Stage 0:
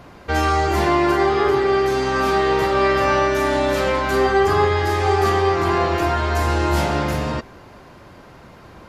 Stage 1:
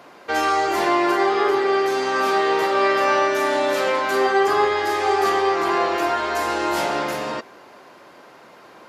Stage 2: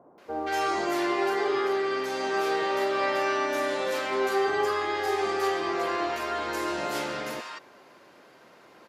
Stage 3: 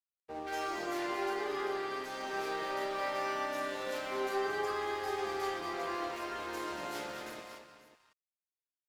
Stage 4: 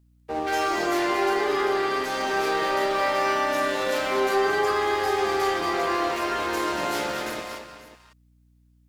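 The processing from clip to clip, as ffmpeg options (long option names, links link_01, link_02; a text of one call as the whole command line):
ffmpeg -i in.wav -af "highpass=350" out.wav
ffmpeg -i in.wav -filter_complex "[0:a]acrossover=split=930[link_01][link_02];[link_02]adelay=180[link_03];[link_01][link_03]amix=inputs=2:normalize=0,volume=-6.5dB" out.wav
ffmpeg -i in.wav -af "aeval=exprs='sgn(val(0))*max(abs(val(0))-0.0075,0)':channel_layout=same,aecho=1:1:228|545:0.355|0.168,volume=-8dB" out.wav
ffmpeg -i in.wav -filter_complex "[0:a]asplit=2[link_01][link_02];[link_02]alimiter=level_in=6dB:limit=-24dB:level=0:latency=1,volume=-6dB,volume=-1.5dB[link_03];[link_01][link_03]amix=inputs=2:normalize=0,aeval=exprs='val(0)+0.000501*(sin(2*PI*60*n/s)+sin(2*PI*2*60*n/s)/2+sin(2*PI*3*60*n/s)/3+sin(2*PI*4*60*n/s)/4+sin(2*PI*5*60*n/s)/5)':channel_layout=same,volume=8dB" out.wav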